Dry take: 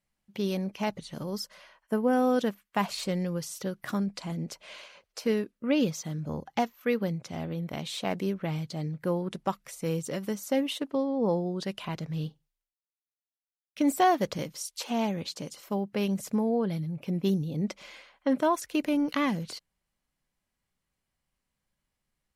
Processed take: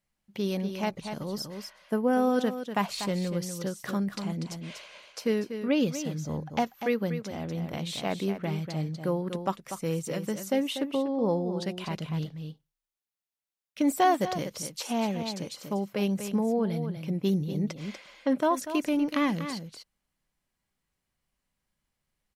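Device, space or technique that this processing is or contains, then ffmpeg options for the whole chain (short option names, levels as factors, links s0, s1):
ducked delay: -filter_complex "[0:a]asplit=3[s0][s1][s2];[s1]adelay=242,volume=0.501[s3];[s2]apad=whole_len=996450[s4];[s3][s4]sidechaincompress=threshold=0.0398:ratio=4:attack=16:release=867[s5];[s0][s5]amix=inputs=2:normalize=0"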